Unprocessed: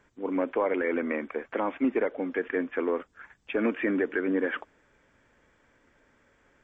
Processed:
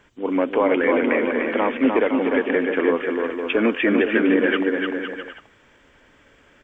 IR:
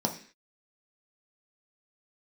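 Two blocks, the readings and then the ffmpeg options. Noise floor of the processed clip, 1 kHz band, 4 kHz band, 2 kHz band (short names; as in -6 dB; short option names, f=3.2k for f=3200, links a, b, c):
-55 dBFS, +9.5 dB, n/a, +10.5 dB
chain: -af "equalizer=f=3k:w=2.8:g=8.5,aecho=1:1:300|510|657|759.9|831.9:0.631|0.398|0.251|0.158|0.1,volume=7dB"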